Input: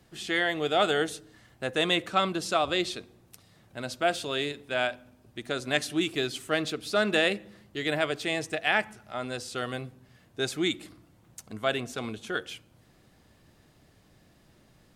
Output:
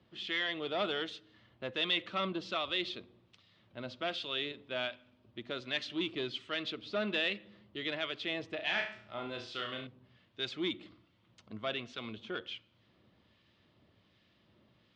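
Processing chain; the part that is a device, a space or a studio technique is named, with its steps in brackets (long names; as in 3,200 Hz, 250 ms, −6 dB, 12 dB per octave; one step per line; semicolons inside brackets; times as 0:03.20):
guitar amplifier with harmonic tremolo (two-band tremolo in antiphase 1.3 Hz, depth 50%, crossover 1,300 Hz; soft clipping −22 dBFS, distortion −13 dB; loudspeaker in its box 100–4,200 Hz, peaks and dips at 150 Hz −8 dB, 280 Hz −4 dB, 440 Hz −5 dB, 760 Hz −8 dB, 1,600 Hz −5 dB, 3,200 Hz +5 dB)
0:08.55–0:09.87: flutter between parallel walls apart 5.9 metres, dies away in 0.44 s
level −2 dB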